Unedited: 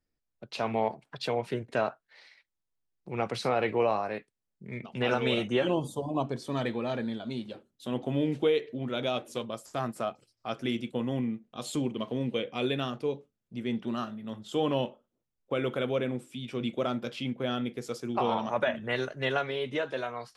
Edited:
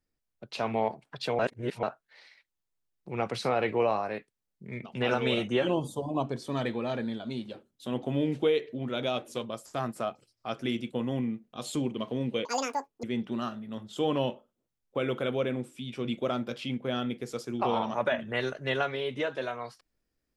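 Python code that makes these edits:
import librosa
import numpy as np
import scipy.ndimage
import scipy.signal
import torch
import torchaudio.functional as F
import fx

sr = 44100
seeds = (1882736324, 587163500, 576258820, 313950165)

y = fx.edit(x, sr, fx.reverse_span(start_s=1.39, length_s=0.44),
    fx.speed_span(start_s=12.45, length_s=1.14, speed=1.95), tone=tone)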